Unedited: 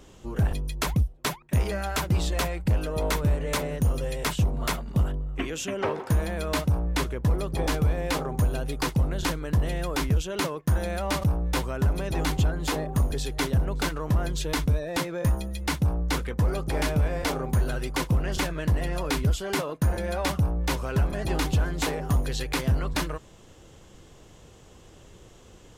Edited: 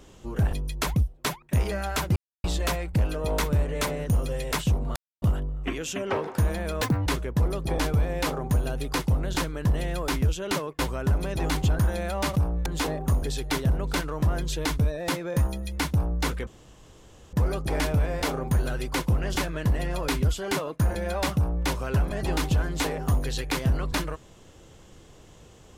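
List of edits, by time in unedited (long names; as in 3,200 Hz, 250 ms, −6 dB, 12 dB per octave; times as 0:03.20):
0:02.16: splice in silence 0.28 s
0:04.68–0:04.94: silence
0:06.54–0:06.94: play speed 167%
0:10.67–0:11.54: move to 0:12.54
0:16.35: splice in room tone 0.86 s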